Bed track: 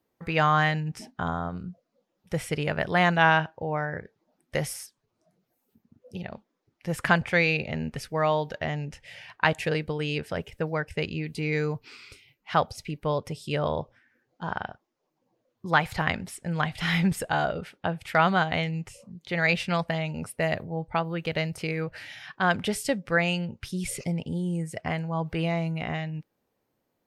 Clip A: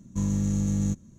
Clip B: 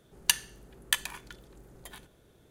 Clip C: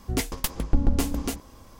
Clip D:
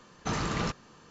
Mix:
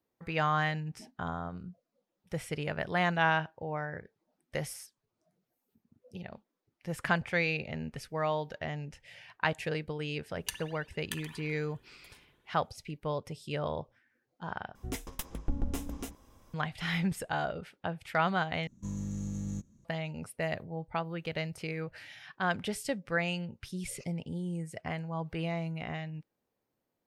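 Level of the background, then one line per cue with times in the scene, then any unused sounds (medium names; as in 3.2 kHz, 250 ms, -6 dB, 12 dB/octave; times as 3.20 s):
bed track -7 dB
10.19 s: add B -13 dB + spring tank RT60 1.4 s, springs 54 ms, chirp 70 ms, DRR 4 dB
14.75 s: replace with C -11 dB + band-stop 4.5 kHz, Q 6.4
18.67 s: replace with A -11 dB
not used: D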